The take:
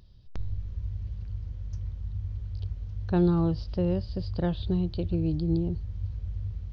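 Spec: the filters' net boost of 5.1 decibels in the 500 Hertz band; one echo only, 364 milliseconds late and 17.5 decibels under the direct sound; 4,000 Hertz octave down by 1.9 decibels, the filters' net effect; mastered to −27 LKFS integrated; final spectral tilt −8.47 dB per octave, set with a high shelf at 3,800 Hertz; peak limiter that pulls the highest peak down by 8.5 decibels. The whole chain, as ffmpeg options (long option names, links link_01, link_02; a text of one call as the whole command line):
ffmpeg -i in.wav -af "equalizer=frequency=500:width_type=o:gain=7.5,highshelf=frequency=3800:gain=3.5,equalizer=frequency=4000:width_type=o:gain=-4.5,alimiter=limit=-20.5dB:level=0:latency=1,aecho=1:1:364:0.133,volume=5dB" out.wav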